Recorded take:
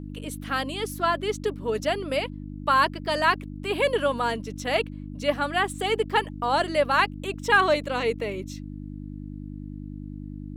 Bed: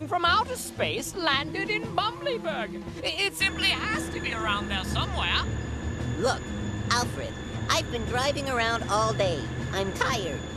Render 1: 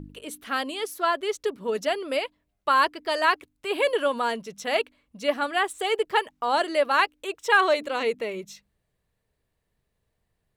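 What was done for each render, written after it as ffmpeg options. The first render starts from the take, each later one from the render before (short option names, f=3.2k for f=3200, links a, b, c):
-af "bandreject=f=50:t=h:w=4,bandreject=f=100:t=h:w=4,bandreject=f=150:t=h:w=4,bandreject=f=200:t=h:w=4,bandreject=f=250:t=h:w=4,bandreject=f=300:t=h:w=4"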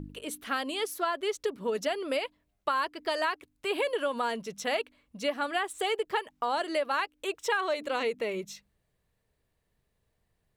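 -af "acompressor=threshold=-26dB:ratio=6"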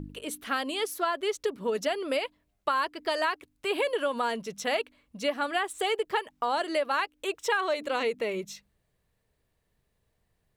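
-af "volume=1.5dB"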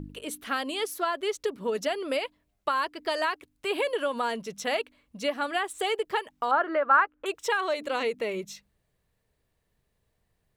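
-filter_complex "[0:a]asettb=1/sr,asplit=3[a][b][c];[a]atrim=end=6.514[d];[b]atrim=start=6.51:end=7.26,asetpts=PTS-STARTPTS,afade=t=in:d=0.004:c=qsin,afade=t=out:st=0.746:d=0.004:c=qsin,lowpass=f=1.4k:t=q:w=3.8[e];[c]atrim=start=7.256[f];[d][e]acrossfade=d=0.004:c1=hsin:c2=qsin[g];[g][f]acrossfade=d=0.004:c1=qsin:c2=hsin"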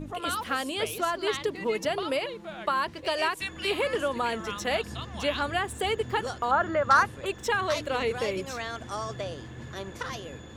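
-filter_complex "[1:a]volume=-9.5dB[a];[0:a][a]amix=inputs=2:normalize=0"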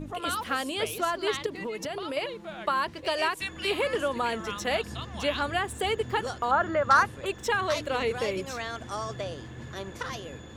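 -filter_complex "[0:a]asettb=1/sr,asplit=3[a][b][c];[a]atrim=end=1.464[d];[b]atrim=start=1.46:end=2.17,asetpts=PTS-STARTPTS,afade=t=in:d=0.004:c=qsin,afade=t=out:st=0.706:d=0.004:c=qsin,acompressor=threshold=-30dB:ratio=6:attack=3.2:release=140:knee=1:detection=peak[e];[c]atrim=start=2.166[f];[d][e]acrossfade=d=0.004:c1=hsin:c2=qsin[g];[g][f]acrossfade=d=0.004:c1=qsin:c2=hsin"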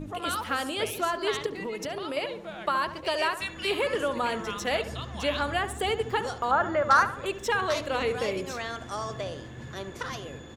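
-filter_complex "[0:a]asplit=2[a][b];[b]adelay=70,lowpass=f=1.8k:p=1,volume=-11dB,asplit=2[c][d];[d]adelay=70,lowpass=f=1.8k:p=1,volume=0.54,asplit=2[e][f];[f]adelay=70,lowpass=f=1.8k:p=1,volume=0.54,asplit=2[g][h];[h]adelay=70,lowpass=f=1.8k:p=1,volume=0.54,asplit=2[i][j];[j]adelay=70,lowpass=f=1.8k:p=1,volume=0.54,asplit=2[k][l];[l]adelay=70,lowpass=f=1.8k:p=1,volume=0.54[m];[a][c][e][g][i][k][m]amix=inputs=7:normalize=0"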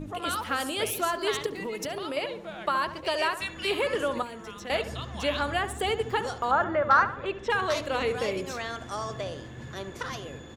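-filter_complex "[0:a]asettb=1/sr,asplit=3[a][b][c];[a]atrim=end=0.604[d];[b]atrim=start=0.6:end=2.09,asetpts=PTS-STARTPTS,afade=t=in:d=0.004:c=qsin,afade=t=out:st=1.486:d=0.004:c=qsin,highshelf=f=8.8k:g=9[e];[c]atrim=start=2.086[f];[d][e]acrossfade=d=0.004:c1=hsin:c2=qsin[g];[g][f]acrossfade=d=0.004:c1=qsin:c2=hsin,asettb=1/sr,asplit=3[h][i][j];[h]atrim=end=4.224[k];[i]atrim=start=4.22:end=4.7,asetpts=PTS-STARTPTS,afade=t=in:d=0.004:c=qsin,afade=t=out:st=0.476:d=0.004:c=qsin,acrossover=split=410|6400[l][m][n];[l]acompressor=threshold=-44dB:ratio=4[o];[m]acompressor=threshold=-42dB:ratio=4[p];[n]acompressor=threshold=-57dB:ratio=4[q];[o][p][q]amix=inputs=3:normalize=0[r];[j]atrim=start=4.696[s];[k][r]acrossfade=d=0.004:c1=hsin:c2=qsin[t];[t][s]acrossfade=d=0.004:c1=qsin:c2=hsin,asettb=1/sr,asplit=3[u][v][w];[u]atrim=end=6.644[x];[v]atrim=start=6.64:end=7.5,asetpts=PTS-STARTPTS,afade=t=in:d=0.004:c=qsin,afade=t=out:st=0.856:d=0.004:c=qsin,lowpass=3.2k[y];[w]atrim=start=7.496[z];[x][y]acrossfade=d=0.004:c1=hsin:c2=qsin[aa];[aa][z]acrossfade=d=0.004:c1=qsin:c2=hsin"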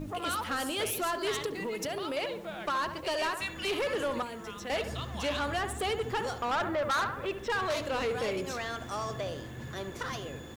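-af "acrusher=bits=9:mix=0:aa=0.000001,asoftclip=type=tanh:threshold=-26dB"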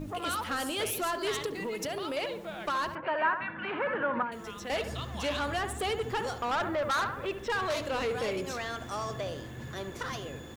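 -filter_complex "[0:a]asettb=1/sr,asplit=3[a][b][c];[a]atrim=end=2.954[d];[b]atrim=start=2.95:end=4.32,asetpts=PTS-STARTPTS,afade=t=in:d=0.004:c=qsin,afade=t=out:st=1.366:d=0.004:c=qsin,highpass=f=110:w=0.5412,highpass=f=110:w=1.3066,equalizer=f=210:t=q:w=4:g=6,equalizer=f=400:t=q:w=4:g=-7,equalizer=f=940:t=q:w=4:g=6,equalizer=f=1.5k:t=q:w=4:g=10,lowpass=f=2.3k:w=0.5412,lowpass=f=2.3k:w=1.3066[e];[c]atrim=start=4.316[f];[d][e]acrossfade=d=0.004:c1=hsin:c2=qsin[g];[g][f]acrossfade=d=0.004:c1=qsin:c2=hsin"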